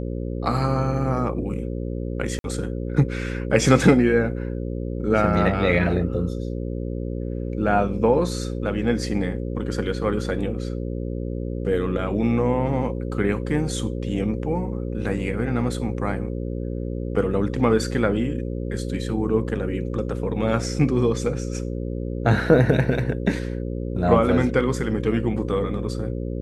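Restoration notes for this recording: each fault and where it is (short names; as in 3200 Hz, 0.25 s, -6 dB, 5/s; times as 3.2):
buzz 60 Hz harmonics 9 -28 dBFS
2.39–2.44 gap 52 ms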